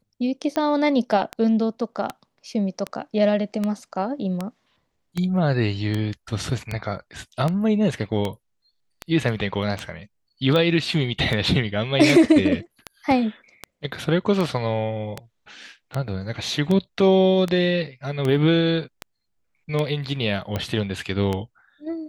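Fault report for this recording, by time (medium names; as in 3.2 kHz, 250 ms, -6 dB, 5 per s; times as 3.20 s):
tick 78 rpm -12 dBFS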